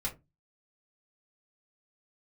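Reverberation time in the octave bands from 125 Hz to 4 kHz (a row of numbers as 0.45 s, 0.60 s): 0.40 s, 0.35 s, 0.25 s, 0.20 s, 0.15 s, 0.15 s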